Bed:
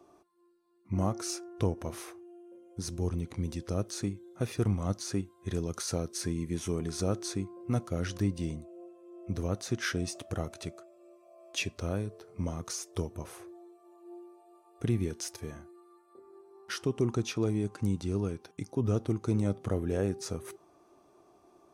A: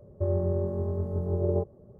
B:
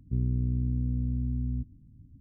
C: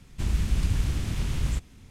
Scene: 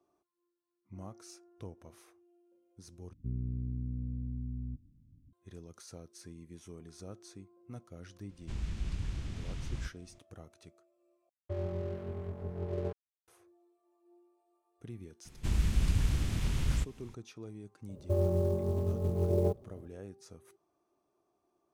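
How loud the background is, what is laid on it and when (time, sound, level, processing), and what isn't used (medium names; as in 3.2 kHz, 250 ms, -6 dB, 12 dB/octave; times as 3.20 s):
bed -16.5 dB
3.13 s: replace with B -8.5 dB
8.29 s: add C -11.5 dB + low-pass 7 kHz
11.29 s: replace with A -8 dB + crossover distortion -40.5 dBFS
15.25 s: add C -3.5 dB
17.89 s: add A -2 dB + short-mantissa float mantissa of 4-bit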